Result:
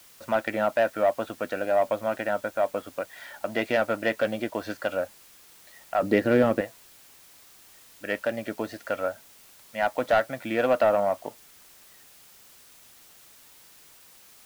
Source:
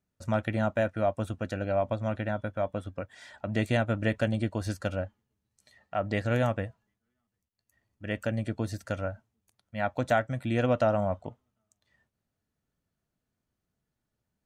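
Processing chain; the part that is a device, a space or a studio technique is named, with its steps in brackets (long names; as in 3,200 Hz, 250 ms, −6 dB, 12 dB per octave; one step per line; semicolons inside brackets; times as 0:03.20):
tape answering machine (band-pass filter 390–3,100 Hz; soft clipping −21 dBFS, distortion −16 dB; tape wow and flutter; white noise bed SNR 24 dB)
0:06.02–0:06.61: low shelf with overshoot 490 Hz +9.5 dB, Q 1.5
level +7.5 dB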